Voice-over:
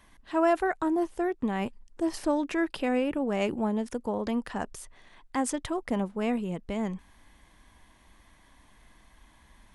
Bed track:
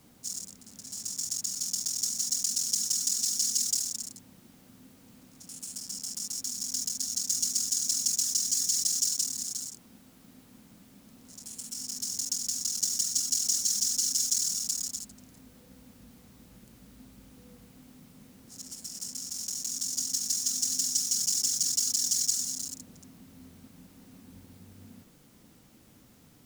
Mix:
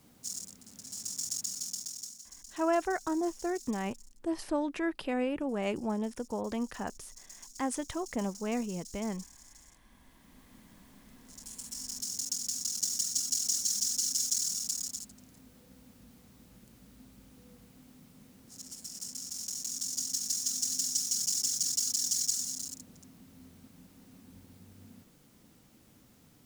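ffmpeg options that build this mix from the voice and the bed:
-filter_complex "[0:a]adelay=2250,volume=0.596[s0];[1:a]volume=6.68,afade=t=out:st=1.38:d=0.86:silence=0.105925,afade=t=in:st=9.66:d=0.93:silence=0.112202[s1];[s0][s1]amix=inputs=2:normalize=0"

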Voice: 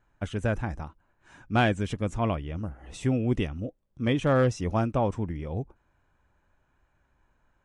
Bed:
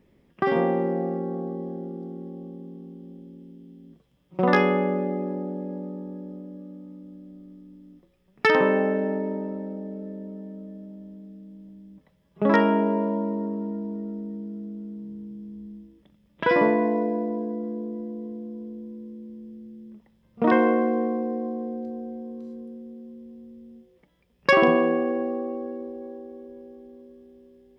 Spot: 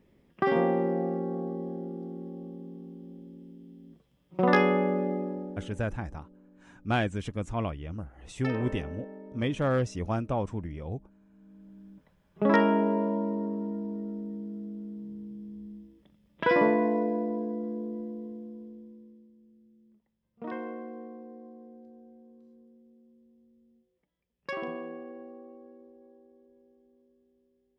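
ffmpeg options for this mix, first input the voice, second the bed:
-filter_complex "[0:a]adelay=5350,volume=0.631[s0];[1:a]volume=4.22,afade=t=out:st=5.12:d=0.71:silence=0.16788,afade=t=in:st=11.3:d=0.55:silence=0.177828,afade=t=out:st=17.98:d=1.34:silence=0.177828[s1];[s0][s1]amix=inputs=2:normalize=0"

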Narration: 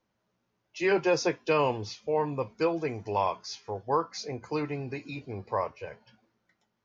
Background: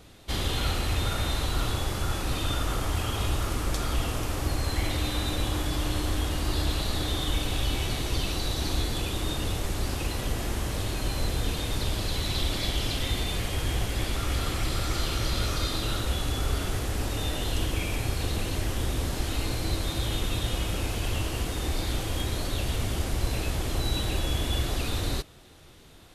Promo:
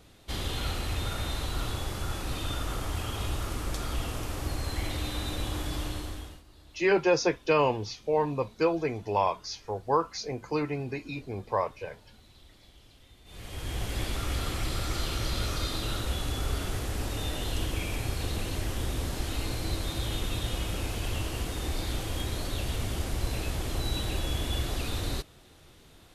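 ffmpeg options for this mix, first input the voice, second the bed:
-filter_complex "[0:a]adelay=6000,volume=1.19[s0];[1:a]volume=10.6,afade=t=out:st=5.78:d=0.65:silence=0.0668344,afade=t=in:st=13.24:d=0.71:silence=0.0562341[s1];[s0][s1]amix=inputs=2:normalize=0"

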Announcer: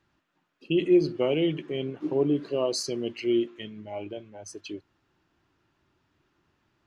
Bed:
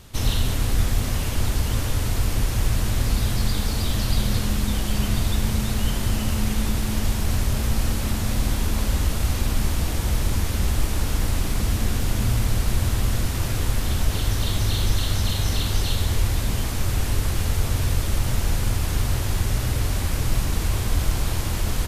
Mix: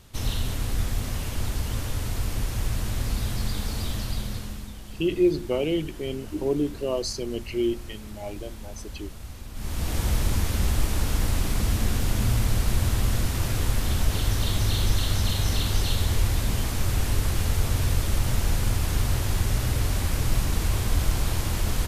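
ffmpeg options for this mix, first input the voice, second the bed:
-filter_complex "[0:a]adelay=4300,volume=0.944[s0];[1:a]volume=3.16,afade=t=out:st=3.84:d=0.9:silence=0.266073,afade=t=in:st=9.53:d=0.46:silence=0.16788[s1];[s0][s1]amix=inputs=2:normalize=0"

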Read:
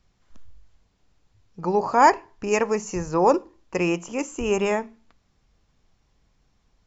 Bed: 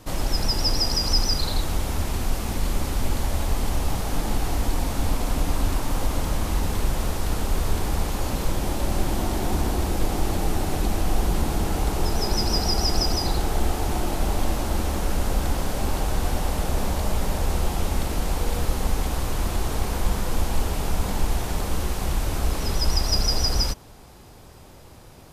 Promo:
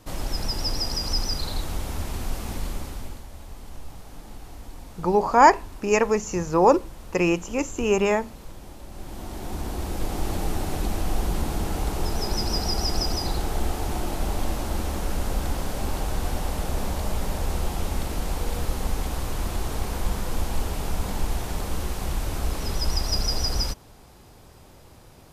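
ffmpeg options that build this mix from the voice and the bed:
-filter_complex "[0:a]adelay=3400,volume=1.19[s0];[1:a]volume=2.99,afade=t=out:st=2.54:d=0.7:silence=0.237137,afade=t=in:st=8.91:d=1.42:silence=0.199526[s1];[s0][s1]amix=inputs=2:normalize=0"

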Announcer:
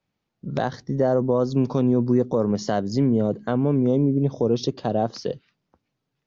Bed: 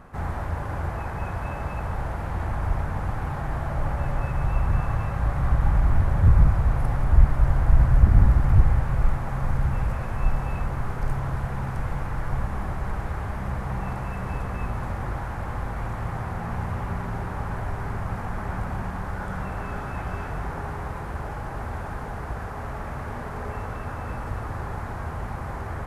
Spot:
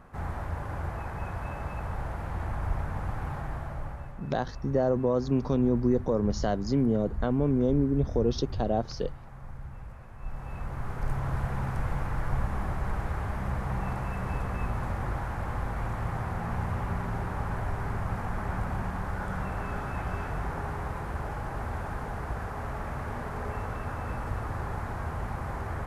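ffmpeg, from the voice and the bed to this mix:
-filter_complex "[0:a]adelay=3750,volume=0.562[s0];[1:a]volume=3.55,afade=t=out:st=3.33:d=0.84:silence=0.223872,afade=t=in:st=10.18:d=1.22:silence=0.158489[s1];[s0][s1]amix=inputs=2:normalize=0"

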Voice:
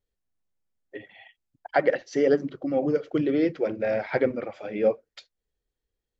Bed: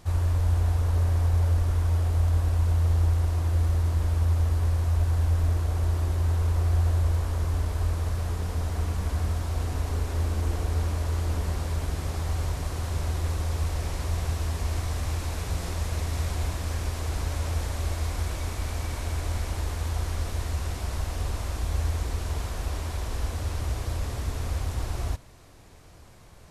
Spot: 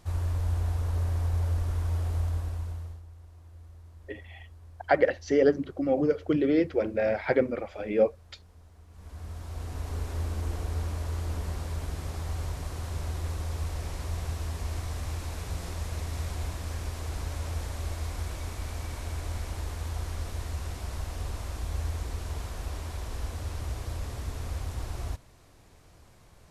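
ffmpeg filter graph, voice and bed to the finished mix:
-filter_complex "[0:a]adelay=3150,volume=0.944[s0];[1:a]volume=5.96,afade=t=out:st=2.15:d=0.87:silence=0.0944061,afade=t=in:st=8.89:d=1.14:silence=0.0944061[s1];[s0][s1]amix=inputs=2:normalize=0"

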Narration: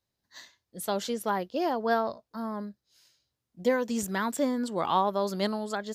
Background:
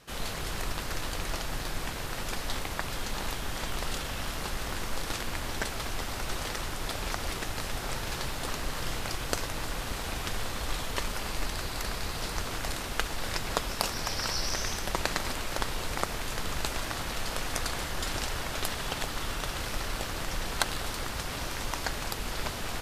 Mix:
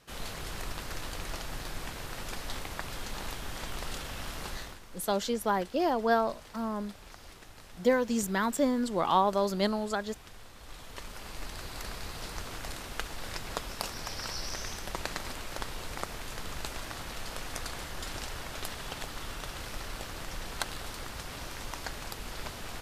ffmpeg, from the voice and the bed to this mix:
-filter_complex "[0:a]adelay=4200,volume=1.06[s0];[1:a]volume=2.11,afade=t=out:st=4.5:d=0.3:silence=0.237137,afade=t=in:st=10.56:d=1.23:silence=0.281838[s1];[s0][s1]amix=inputs=2:normalize=0"

